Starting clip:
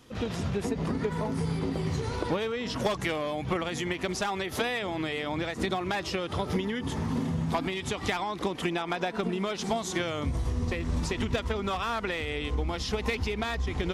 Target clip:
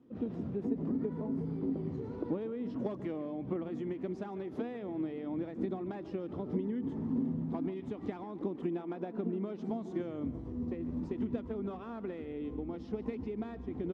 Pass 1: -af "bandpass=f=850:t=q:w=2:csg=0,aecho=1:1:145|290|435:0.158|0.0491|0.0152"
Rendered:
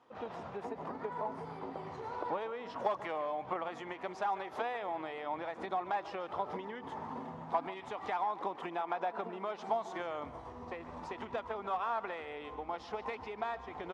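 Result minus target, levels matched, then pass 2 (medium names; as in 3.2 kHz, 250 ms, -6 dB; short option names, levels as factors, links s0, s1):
1 kHz band +15.5 dB
-af "bandpass=f=270:t=q:w=2:csg=0,aecho=1:1:145|290|435:0.158|0.0491|0.0152"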